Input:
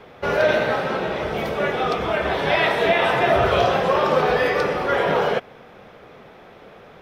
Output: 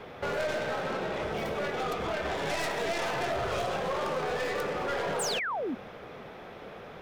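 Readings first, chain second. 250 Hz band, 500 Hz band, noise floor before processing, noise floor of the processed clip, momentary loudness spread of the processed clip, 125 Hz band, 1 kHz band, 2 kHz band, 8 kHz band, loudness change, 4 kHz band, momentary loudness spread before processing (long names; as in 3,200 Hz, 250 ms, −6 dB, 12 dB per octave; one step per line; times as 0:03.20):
−10.0 dB, −11.5 dB, −46 dBFS, −46 dBFS, 15 LU, −11.0 dB, −11.5 dB, −11.0 dB, can't be measured, −11.5 dB, −8.5 dB, 7 LU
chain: stylus tracing distortion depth 0.16 ms
downward compressor 2.5 to 1, threshold −33 dBFS, peak gain reduction 13 dB
sound drawn into the spectrogram fall, 0:05.19–0:05.75, 220–9,500 Hz −32 dBFS
hard clipping −26.5 dBFS, distortion −15 dB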